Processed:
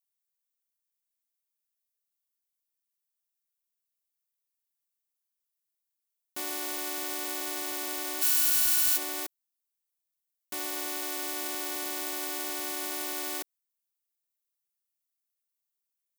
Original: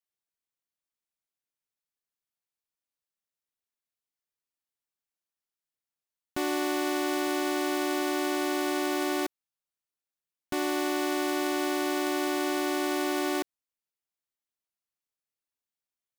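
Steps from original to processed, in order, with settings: 8.21–8.96 spectral whitening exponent 0.1; RIAA curve recording; gain -8.5 dB

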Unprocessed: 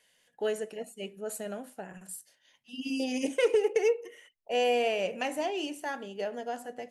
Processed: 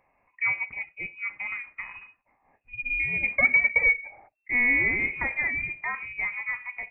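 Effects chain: inverted band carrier 2700 Hz; gain +4 dB

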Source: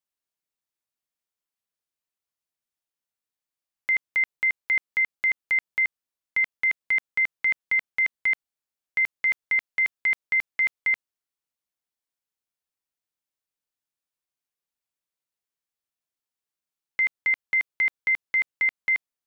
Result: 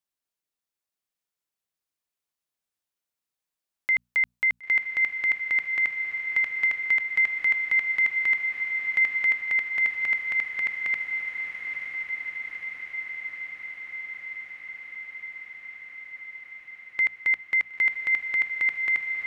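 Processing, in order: notches 60/120/180/240 Hz; diffused feedback echo 0.971 s, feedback 79%, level -6 dB

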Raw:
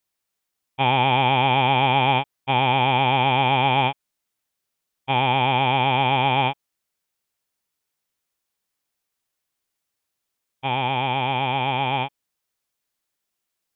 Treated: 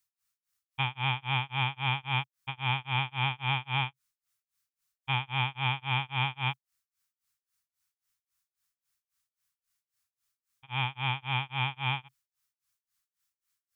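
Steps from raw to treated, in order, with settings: EQ curve 130 Hz 0 dB, 210 Hz -13 dB, 580 Hz -21 dB, 1200 Hz +1 dB, 3200 Hz -2 dB, 5500 Hz +2 dB; limiter -17.5 dBFS, peak gain reduction 4 dB; tremolo 3.7 Hz, depth 99%

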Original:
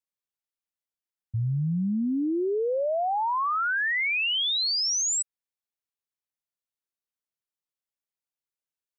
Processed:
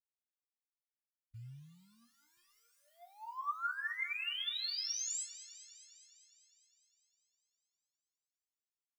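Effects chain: loudest bins only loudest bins 8; 2.37–2.88 low shelf 390 Hz -3.5 dB; in parallel at -9 dB: short-mantissa float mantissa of 2-bit; on the sum: elliptic band-stop 130–1100 Hz, stop band 50 dB; resonator bank A#3 major, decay 0.21 s; thinning echo 0.203 s, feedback 69%, high-pass 710 Hz, level -14.5 dB

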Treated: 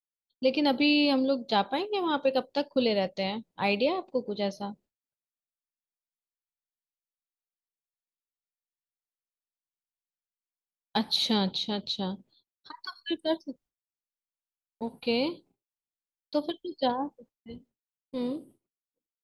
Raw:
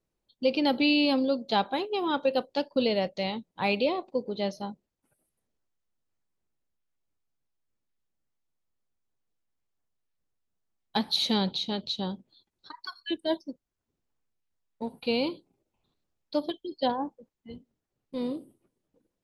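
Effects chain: expander -53 dBFS

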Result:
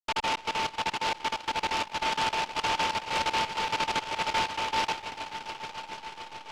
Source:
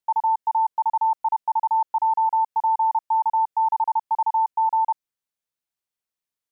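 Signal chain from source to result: backlash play -45 dBFS; swelling echo 0.143 s, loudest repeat 5, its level -14.5 dB; noise-modulated delay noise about 1700 Hz, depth 0.15 ms; gain -8 dB

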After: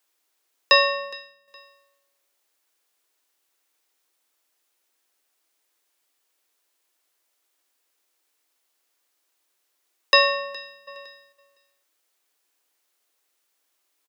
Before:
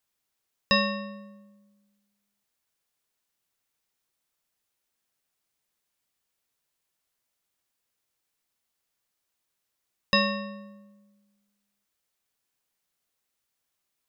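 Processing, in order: steep high-pass 270 Hz 96 dB/oct; feedback echo 0.415 s, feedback 28%, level -21 dB; 1.05–1.48 upward expander 1.5:1, over -58 dBFS; 10.36–10.81 echo throw 0.51 s, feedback 10%, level -10 dB; gain +7.5 dB

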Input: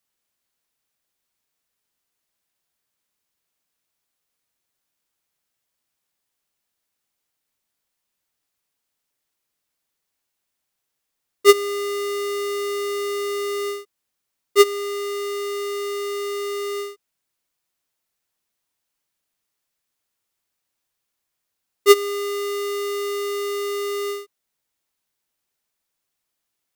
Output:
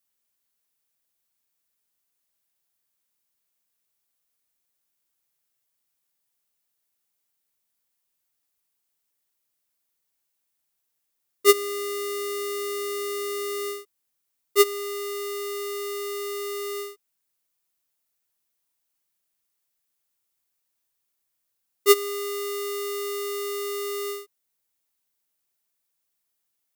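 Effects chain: high shelf 8300 Hz +9.5 dB; gain -5 dB

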